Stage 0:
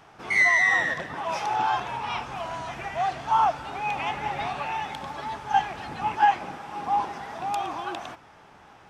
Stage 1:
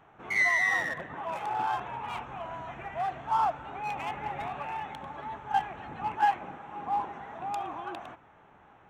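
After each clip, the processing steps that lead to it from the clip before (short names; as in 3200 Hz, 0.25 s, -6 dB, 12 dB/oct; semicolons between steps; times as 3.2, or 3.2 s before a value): Wiener smoothing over 9 samples; gain -5 dB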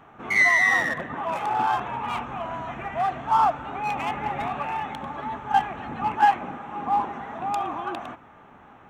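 small resonant body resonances 240/1200 Hz, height 7 dB; gain +6.5 dB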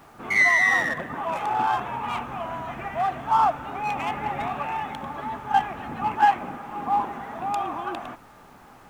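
added noise pink -59 dBFS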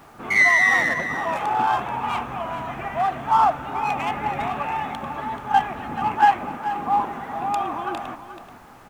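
echo 0.432 s -12 dB; gain +2.5 dB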